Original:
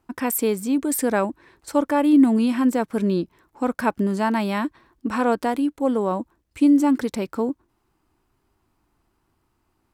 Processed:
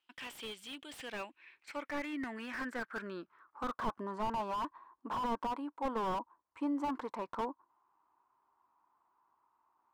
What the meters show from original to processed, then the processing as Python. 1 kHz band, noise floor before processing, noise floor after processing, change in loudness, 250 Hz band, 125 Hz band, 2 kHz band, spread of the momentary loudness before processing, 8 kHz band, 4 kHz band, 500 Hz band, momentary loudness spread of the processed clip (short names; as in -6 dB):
-10.5 dB, -70 dBFS, -84 dBFS, -17.5 dB, -22.0 dB, -20.5 dB, -11.5 dB, 12 LU, under -20 dB, -8.5 dB, -18.0 dB, 11 LU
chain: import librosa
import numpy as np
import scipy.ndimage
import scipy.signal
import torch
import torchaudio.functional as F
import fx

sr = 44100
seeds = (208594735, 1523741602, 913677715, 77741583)

y = fx.filter_sweep_bandpass(x, sr, from_hz=3100.0, to_hz=1000.0, start_s=0.85, end_s=4.12, q=6.1)
y = fx.slew_limit(y, sr, full_power_hz=8.8)
y = y * librosa.db_to_amplitude(6.5)